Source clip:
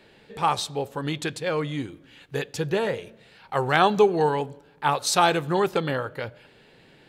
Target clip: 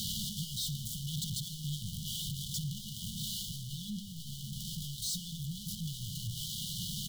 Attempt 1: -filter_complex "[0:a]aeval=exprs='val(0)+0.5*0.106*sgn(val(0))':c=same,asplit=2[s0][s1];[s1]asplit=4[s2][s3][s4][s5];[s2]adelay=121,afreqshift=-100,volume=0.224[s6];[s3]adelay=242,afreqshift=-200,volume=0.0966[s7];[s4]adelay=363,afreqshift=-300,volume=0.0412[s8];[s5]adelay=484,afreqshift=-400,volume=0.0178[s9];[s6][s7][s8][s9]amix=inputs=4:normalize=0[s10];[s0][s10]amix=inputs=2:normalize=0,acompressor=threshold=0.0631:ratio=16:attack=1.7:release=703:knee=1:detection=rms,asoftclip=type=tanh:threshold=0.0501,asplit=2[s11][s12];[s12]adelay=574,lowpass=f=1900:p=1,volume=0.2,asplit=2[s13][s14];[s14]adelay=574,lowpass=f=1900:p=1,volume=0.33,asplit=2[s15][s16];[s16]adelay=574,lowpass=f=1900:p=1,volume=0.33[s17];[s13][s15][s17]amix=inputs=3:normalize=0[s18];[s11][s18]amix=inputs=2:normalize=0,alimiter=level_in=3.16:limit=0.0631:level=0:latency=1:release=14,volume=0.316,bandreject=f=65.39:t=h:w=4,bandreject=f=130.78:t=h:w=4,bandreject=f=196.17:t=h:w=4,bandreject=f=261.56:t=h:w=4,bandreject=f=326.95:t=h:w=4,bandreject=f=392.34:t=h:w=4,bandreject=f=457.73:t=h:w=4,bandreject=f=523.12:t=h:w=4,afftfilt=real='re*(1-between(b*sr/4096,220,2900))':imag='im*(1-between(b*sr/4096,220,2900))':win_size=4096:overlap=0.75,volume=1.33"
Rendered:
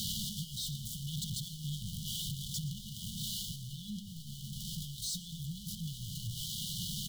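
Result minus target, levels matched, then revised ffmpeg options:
compression: peak gain reduction +8 dB
-filter_complex "[0:a]aeval=exprs='val(0)+0.5*0.106*sgn(val(0))':c=same,asplit=2[s0][s1];[s1]asplit=4[s2][s3][s4][s5];[s2]adelay=121,afreqshift=-100,volume=0.224[s6];[s3]adelay=242,afreqshift=-200,volume=0.0966[s7];[s4]adelay=363,afreqshift=-300,volume=0.0412[s8];[s5]adelay=484,afreqshift=-400,volume=0.0178[s9];[s6][s7][s8][s9]amix=inputs=4:normalize=0[s10];[s0][s10]amix=inputs=2:normalize=0,acompressor=threshold=0.168:ratio=16:attack=1.7:release=703:knee=1:detection=rms,asoftclip=type=tanh:threshold=0.0501,asplit=2[s11][s12];[s12]adelay=574,lowpass=f=1900:p=1,volume=0.2,asplit=2[s13][s14];[s14]adelay=574,lowpass=f=1900:p=1,volume=0.33,asplit=2[s15][s16];[s16]adelay=574,lowpass=f=1900:p=1,volume=0.33[s17];[s13][s15][s17]amix=inputs=3:normalize=0[s18];[s11][s18]amix=inputs=2:normalize=0,alimiter=level_in=3.16:limit=0.0631:level=0:latency=1:release=14,volume=0.316,bandreject=f=65.39:t=h:w=4,bandreject=f=130.78:t=h:w=4,bandreject=f=196.17:t=h:w=4,bandreject=f=261.56:t=h:w=4,bandreject=f=326.95:t=h:w=4,bandreject=f=392.34:t=h:w=4,bandreject=f=457.73:t=h:w=4,bandreject=f=523.12:t=h:w=4,afftfilt=real='re*(1-between(b*sr/4096,220,2900))':imag='im*(1-between(b*sr/4096,220,2900))':win_size=4096:overlap=0.75,volume=1.33"

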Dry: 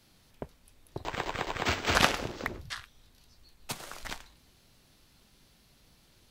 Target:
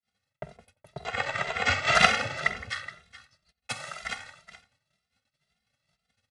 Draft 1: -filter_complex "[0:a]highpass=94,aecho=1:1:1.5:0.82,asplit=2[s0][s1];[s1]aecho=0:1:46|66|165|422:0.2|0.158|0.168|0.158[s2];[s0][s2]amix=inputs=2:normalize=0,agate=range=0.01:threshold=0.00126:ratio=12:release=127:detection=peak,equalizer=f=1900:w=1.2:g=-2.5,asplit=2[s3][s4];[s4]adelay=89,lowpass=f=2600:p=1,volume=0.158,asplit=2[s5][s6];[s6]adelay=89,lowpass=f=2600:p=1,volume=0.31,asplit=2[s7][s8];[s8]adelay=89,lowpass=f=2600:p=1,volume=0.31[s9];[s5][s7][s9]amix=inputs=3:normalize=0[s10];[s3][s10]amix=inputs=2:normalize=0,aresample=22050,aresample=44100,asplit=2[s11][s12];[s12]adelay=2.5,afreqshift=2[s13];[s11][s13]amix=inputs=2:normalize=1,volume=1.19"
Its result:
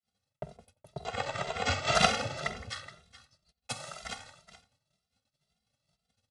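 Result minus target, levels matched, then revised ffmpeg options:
2 kHz band -3.5 dB
-filter_complex "[0:a]highpass=94,aecho=1:1:1.5:0.82,asplit=2[s0][s1];[s1]aecho=0:1:46|66|165|422:0.2|0.158|0.168|0.158[s2];[s0][s2]amix=inputs=2:normalize=0,agate=range=0.01:threshold=0.00126:ratio=12:release=127:detection=peak,equalizer=f=1900:w=1.2:g=8,asplit=2[s3][s4];[s4]adelay=89,lowpass=f=2600:p=1,volume=0.158,asplit=2[s5][s6];[s6]adelay=89,lowpass=f=2600:p=1,volume=0.31,asplit=2[s7][s8];[s8]adelay=89,lowpass=f=2600:p=1,volume=0.31[s9];[s5][s7][s9]amix=inputs=3:normalize=0[s10];[s3][s10]amix=inputs=2:normalize=0,aresample=22050,aresample=44100,asplit=2[s11][s12];[s12]adelay=2.5,afreqshift=2[s13];[s11][s13]amix=inputs=2:normalize=1,volume=1.19"

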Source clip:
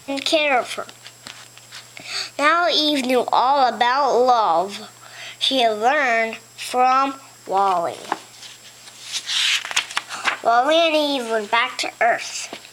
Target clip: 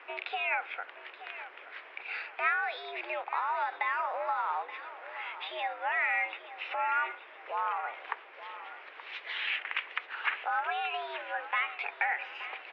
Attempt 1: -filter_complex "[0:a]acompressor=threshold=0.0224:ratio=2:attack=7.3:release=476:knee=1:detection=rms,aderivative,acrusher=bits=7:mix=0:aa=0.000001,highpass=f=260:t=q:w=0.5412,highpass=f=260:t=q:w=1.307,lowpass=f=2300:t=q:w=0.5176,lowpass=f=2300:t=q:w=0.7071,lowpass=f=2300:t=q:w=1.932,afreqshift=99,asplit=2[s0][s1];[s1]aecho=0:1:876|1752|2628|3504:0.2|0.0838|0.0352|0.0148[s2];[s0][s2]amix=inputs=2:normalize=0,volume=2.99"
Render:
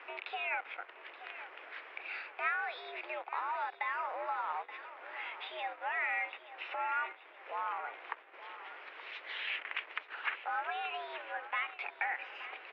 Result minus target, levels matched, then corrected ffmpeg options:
compression: peak gain reduction +5 dB
-filter_complex "[0:a]acompressor=threshold=0.0708:ratio=2:attack=7.3:release=476:knee=1:detection=rms,aderivative,acrusher=bits=7:mix=0:aa=0.000001,highpass=f=260:t=q:w=0.5412,highpass=f=260:t=q:w=1.307,lowpass=f=2300:t=q:w=0.5176,lowpass=f=2300:t=q:w=0.7071,lowpass=f=2300:t=q:w=1.932,afreqshift=99,asplit=2[s0][s1];[s1]aecho=0:1:876|1752|2628|3504:0.2|0.0838|0.0352|0.0148[s2];[s0][s2]amix=inputs=2:normalize=0,volume=2.99"

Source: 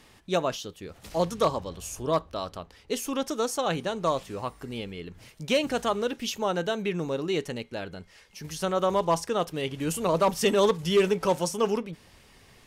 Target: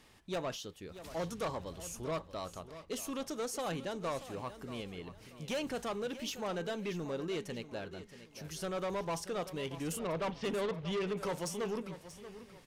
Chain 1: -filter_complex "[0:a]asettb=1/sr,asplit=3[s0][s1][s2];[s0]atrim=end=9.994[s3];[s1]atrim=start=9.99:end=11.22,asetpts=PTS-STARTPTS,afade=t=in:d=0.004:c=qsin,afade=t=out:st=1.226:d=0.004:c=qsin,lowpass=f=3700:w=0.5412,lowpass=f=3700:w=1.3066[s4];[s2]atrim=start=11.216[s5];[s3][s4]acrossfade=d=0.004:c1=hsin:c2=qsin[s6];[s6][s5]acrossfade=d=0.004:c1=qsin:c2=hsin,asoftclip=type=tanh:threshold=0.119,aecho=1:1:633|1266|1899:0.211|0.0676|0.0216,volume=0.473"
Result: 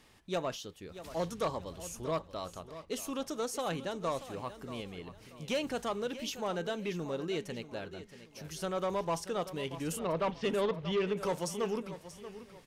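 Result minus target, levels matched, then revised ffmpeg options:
saturation: distortion -7 dB
-filter_complex "[0:a]asettb=1/sr,asplit=3[s0][s1][s2];[s0]atrim=end=9.994[s3];[s1]atrim=start=9.99:end=11.22,asetpts=PTS-STARTPTS,afade=t=in:d=0.004:c=qsin,afade=t=out:st=1.226:d=0.004:c=qsin,lowpass=f=3700:w=0.5412,lowpass=f=3700:w=1.3066[s4];[s2]atrim=start=11.216[s5];[s3][s4]acrossfade=d=0.004:c1=hsin:c2=qsin[s6];[s6][s5]acrossfade=d=0.004:c1=qsin:c2=hsin,asoftclip=type=tanh:threshold=0.0562,aecho=1:1:633|1266|1899:0.211|0.0676|0.0216,volume=0.473"

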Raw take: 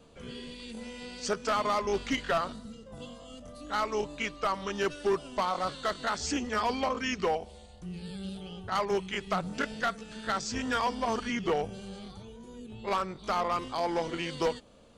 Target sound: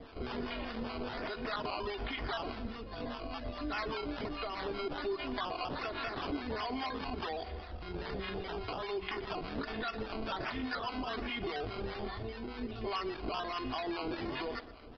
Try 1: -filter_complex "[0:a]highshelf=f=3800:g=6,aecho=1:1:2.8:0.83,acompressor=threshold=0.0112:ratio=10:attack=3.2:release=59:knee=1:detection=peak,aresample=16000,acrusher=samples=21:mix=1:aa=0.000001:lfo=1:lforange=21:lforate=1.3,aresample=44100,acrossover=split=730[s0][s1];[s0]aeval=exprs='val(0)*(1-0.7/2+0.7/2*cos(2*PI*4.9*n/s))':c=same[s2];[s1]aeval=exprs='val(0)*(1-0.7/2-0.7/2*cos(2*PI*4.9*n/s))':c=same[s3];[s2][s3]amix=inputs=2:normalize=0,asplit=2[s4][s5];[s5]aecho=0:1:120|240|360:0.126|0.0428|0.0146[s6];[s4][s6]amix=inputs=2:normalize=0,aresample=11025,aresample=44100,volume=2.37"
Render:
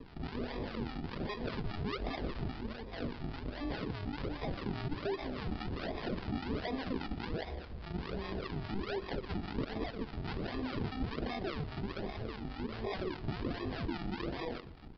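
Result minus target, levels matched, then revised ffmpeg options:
decimation with a swept rate: distortion +12 dB
-filter_complex "[0:a]highshelf=f=3800:g=6,aecho=1:1:2.8:0.83,acompressor=threshold=0.0112:ratio=10:attack=3.2:release=59:knee=1:detection=peak,aresample=16000,acrusher=samples=6:mix=1:aa=0.000001:lfo=1:lforange=6:lforate=1.3,aresample=44100,acrossover=split=730[s0][s1];[s0]aeval=exprs='val(0)*(1-0.7/2+0.7/2*cos(2*PI*4.9*n/s))':c=same[s2];[s1]aeval=exprs='val(0)*(1-0.7/2-0.7/2*cos(2*PI*4.9*n/s))':c=same[s3];[s2][s3]amix=inputs=2:normalize=0,asplit=2[s4][s5];[s5]aecho=0:1:120|240|360:0.126|0.0428|0.0146[s6];[s4][s6]amix=inputs=2:normalize=0,aresample=11025,aresample=44100,volume=2.37"

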